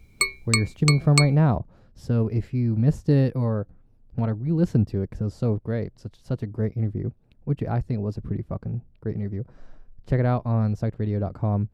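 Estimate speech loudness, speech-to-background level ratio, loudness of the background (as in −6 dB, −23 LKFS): −25.0 LKFS, 0.5 dB, −25.5 LKFS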